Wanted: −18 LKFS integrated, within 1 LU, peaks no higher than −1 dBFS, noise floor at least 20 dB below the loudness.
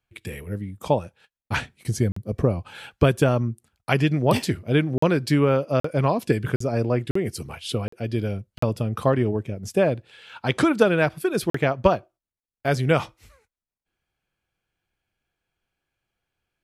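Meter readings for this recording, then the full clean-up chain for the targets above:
number of dropouts 8; longest dropout 44 ms; integrated loudness −23.5 LKFS; sample peak −3.0 dBFS; target loudness −18.0 LKFS
→ repair the gap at 0:02.12/0:04.98/0:05.80/0:06.56/0:07.11/0:07.88/0:08.58/0:11.50, 44 ms
level +5.5 dB
brickwall limiter −1 dBFS

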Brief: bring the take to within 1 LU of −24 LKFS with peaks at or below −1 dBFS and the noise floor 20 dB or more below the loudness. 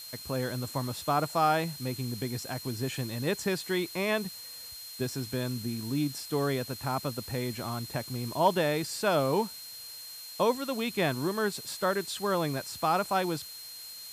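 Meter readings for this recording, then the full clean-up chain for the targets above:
interfering tone 4,200 Hz; level of the tone −44 dBFS; background noise floor −44 dBFS; target noise floor −51 dBFS; integrated loudness −31.0 LKFS; sample peak −12.0 dBFS; target loudness −24.0 LKFS
→ notch filter 4,200 Hz, Q 30
broadband denoise 7 dB, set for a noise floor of −44 dBFS
level +7 dB

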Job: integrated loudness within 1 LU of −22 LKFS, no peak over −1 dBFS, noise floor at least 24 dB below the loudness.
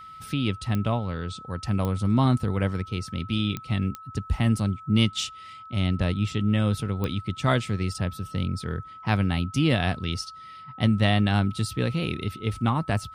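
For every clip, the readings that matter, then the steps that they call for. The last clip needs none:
number of clicks 5; interfering tone 1,300 Hz; level of the tone −41 dBFS; integrated loudness −26.5 LKFS; sample peak −8.5 dBFS; target loudness −22.0 LKFS
→ click removal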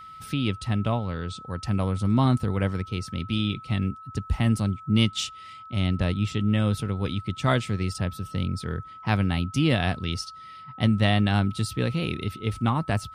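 number of clicks 0; interfering tone 1,300 Hz; level of the tone −41 dBFS
→ notch filter 1,300 Hz, Q 30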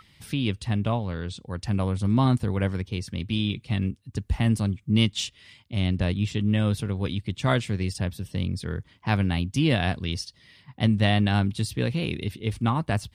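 interfering tone none found; integrated loudness −26.5 LKFS; sample peak −9.0 dBFS; target loudness −22.0 LKFS
→ level +4.5 dB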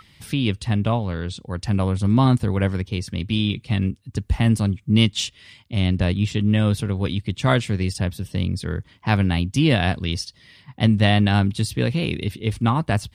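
integrated loudness −22.0 LKFS; sample peak −4.5 dBFS; background noise floor −55 dBFS

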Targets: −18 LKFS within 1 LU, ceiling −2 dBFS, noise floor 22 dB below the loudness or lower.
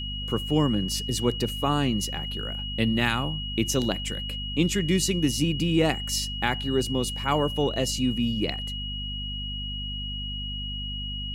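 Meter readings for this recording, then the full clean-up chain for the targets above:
mains hum 50 Hz; hum harmonics up to 250 Hz; level of the hum −32 dBFS; interfering tone 2,900 Hz; level of the tone −33 dBFS; integrated loudness −26.5 LKFS; sample peak −7.5 dBFS; target loudness −18.0 LKFS
→ hum removal 50 Hz, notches 5
notch filter 2,900 Hz, Q 30
level +8.5 dB
brickwall limiter −2 dBFS

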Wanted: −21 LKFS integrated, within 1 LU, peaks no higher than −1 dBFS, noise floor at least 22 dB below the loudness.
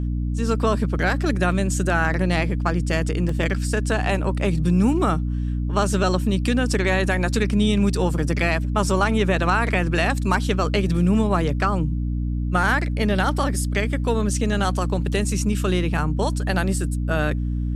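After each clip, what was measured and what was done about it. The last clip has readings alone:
number of dropouts 1; longest dropout 3.4 ms; mains hum 60 Hz; hum harmonics up to 300 Hz; level of the hum −21 dBFS; integrated loudness −22.0 LKFS; sample peak −5.0 dBFS; target loudness −21.0 LKFS
→ repair the gap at 0:03.29, 3.4 ms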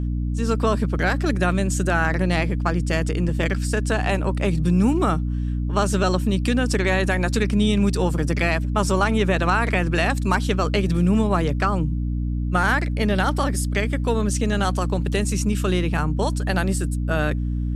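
number of dropouts 0; mains hum 60 Hz; hum harmonics up to 300 Hz; level of the hum −21 dBFS
→ mains-hum notches 60/120/180/240/300 Hz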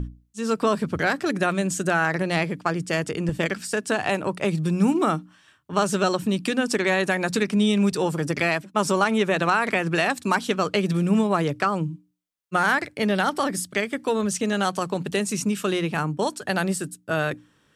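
mains hum none found; integrated loudness −24.0 LKFS; sample peak −6.5 dBFS; target loudness −21.0 LKFS
→ level +3 dB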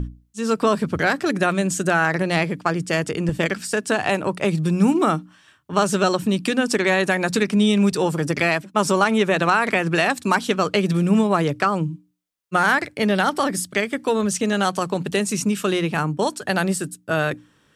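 integrated loudness −21.0 LKFS; sample peak −3.5 dBFS; background noise floor −60 dBFS

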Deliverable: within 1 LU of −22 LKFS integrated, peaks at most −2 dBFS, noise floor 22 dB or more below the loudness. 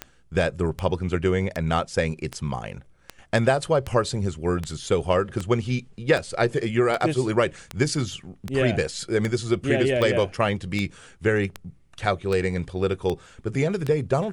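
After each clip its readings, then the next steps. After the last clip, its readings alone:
number of clicks 19; integrated loudness −24.5 LKFS; sample peak −6.5 dBFS; target loudness −22.0 LKFS
→ click removal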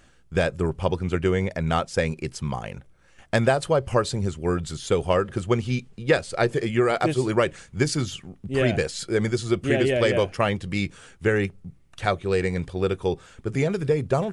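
number of clicks 0; integrated loudness −24.5 LKFS; sample peak −6.5 dBFS; target loudness −22.0 LKFS
→ level +2.5 dB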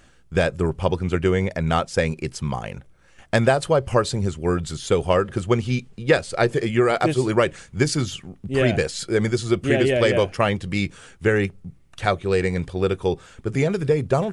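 integrated loudness −22.0 LKFS; sample peak −4.0 dBFS; background noise floor −53 dBFS

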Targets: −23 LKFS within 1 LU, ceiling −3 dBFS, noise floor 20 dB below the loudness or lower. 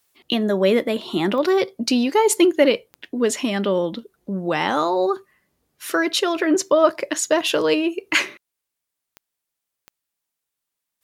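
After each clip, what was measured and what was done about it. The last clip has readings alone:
number of clicks 4; integrated loudness −20.5 LKFS; sample peak −2.5 dBFS; target loudness −23.0 LKFS
→ click removal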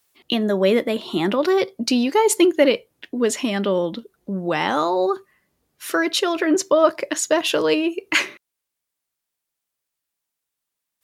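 number of clicks 0; integrated loudness −20.5 LKFS; sample peak −2.5 dBFS; target loudness −23.0 LKFS
→ level −2.5 dB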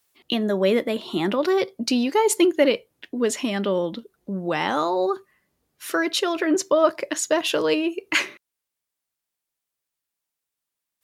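integrated loudness −23.0 LKFS; sample peak −5.0 dBFS; background noise floor −85 dBFS

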